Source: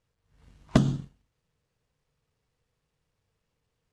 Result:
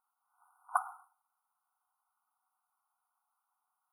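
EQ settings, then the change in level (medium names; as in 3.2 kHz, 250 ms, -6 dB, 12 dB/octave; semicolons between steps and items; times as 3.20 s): brick-wall FIR high-pass 710 Hz; brick-wall FIR band-stop 1.5–9 kHz; +5.5 dB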